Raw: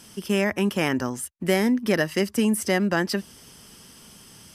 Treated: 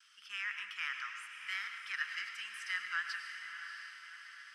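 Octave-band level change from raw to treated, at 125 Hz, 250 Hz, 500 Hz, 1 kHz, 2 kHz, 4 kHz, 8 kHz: below −40 dB, below −40 dB, below −40 dB, −14.5 dB, −7.0 dB, −10.5 dB, −21.5 dB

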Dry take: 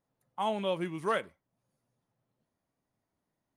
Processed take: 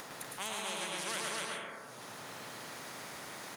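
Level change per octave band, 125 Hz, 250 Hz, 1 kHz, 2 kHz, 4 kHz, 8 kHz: −8.0, −9.0, −5.5, +2.5, +5.5, +18.5 decibels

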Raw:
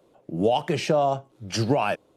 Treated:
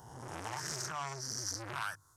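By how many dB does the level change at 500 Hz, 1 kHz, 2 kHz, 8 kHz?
−25.5, −14.5, −7.5, +1.5 decibels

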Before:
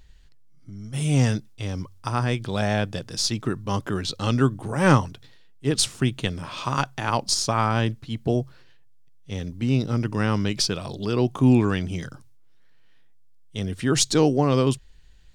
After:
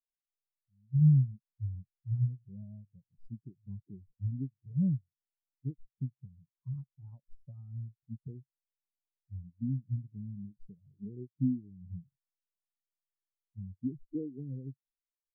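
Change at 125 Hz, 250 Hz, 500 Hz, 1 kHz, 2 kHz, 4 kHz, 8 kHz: −8.0 dB, −12.5 dB, −29.0 dB, below −40 dB, below −40 dB, below −40 dB, below −40 dB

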